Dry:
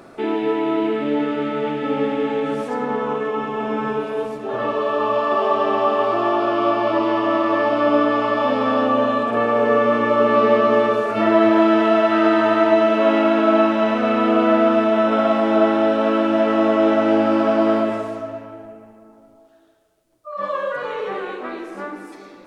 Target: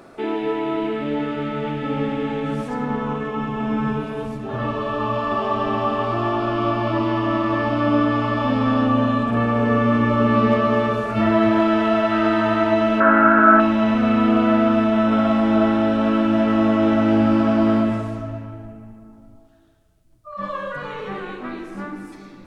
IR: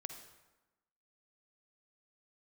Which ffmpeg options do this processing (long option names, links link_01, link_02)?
-filter_complex "[0:a]asubboost=boost=11:cutoff=140,asettb=1/sr,asplit=3[link_01][link_02][link_03];[link_01]atrim=end=13.004[link_04];[link_02]atrim=start=13:end=13.6,asetpts=PTS-STARTPTS,afade=type=in:duration=0.004:curve=qsin,afade=type=out:start_time=0.596:duration=0.004:curve=qsin,lowpass=frequency=1500:width_type=q:width=11[link_05];[link_03]atrim=start=13.596[link_06];[link_04][link_05]acrossfade=duration=0.004:curve1=hsin:curve2=qsin[link_07];[link_07][link_06]acrossfade=duration=0.004:curve1=qsin:curve2=hsin,volume=-1.5dB"